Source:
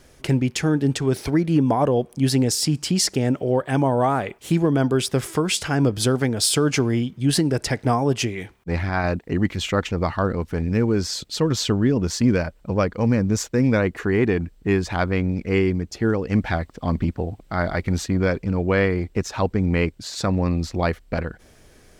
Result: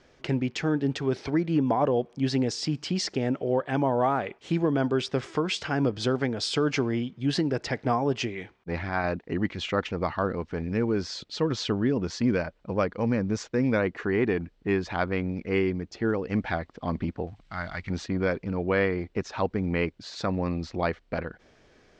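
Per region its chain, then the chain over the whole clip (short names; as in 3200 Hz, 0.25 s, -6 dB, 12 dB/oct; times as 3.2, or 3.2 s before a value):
17.27–17.9 G.711 law mismatch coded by mu + bell 430 Hz -15 dB 2 oct
whole clip: Bessel low-pass 4100 Hz, order 6; low shelf 130 Hz -10.5 dB; gain -3.5 dB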